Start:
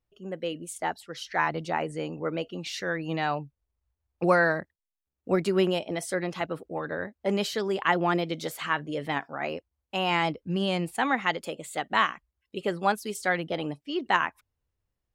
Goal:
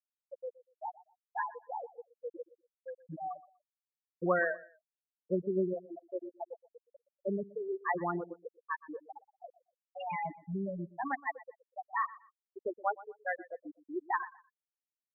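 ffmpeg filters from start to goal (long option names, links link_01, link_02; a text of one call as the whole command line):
ffmpeg -i in.wav -af "adynamicequalizer=threshold=0.00447:dfrequency=240:dqfactor=3.5:tfrequency=240:tqfactor=3.5:attack=5:release=100:ratio=0.375:range=3.5:mode=cutabove:tftype=bell,afftfilt=real='re*gte(hypot(re,im),0.251)':imag='im*gte(hypot(re,im),0.251)':win_size=1024:overlap=0.75,aecho=1:1:121|242:0.112|0.0281,volume=-6.5dB" out.wav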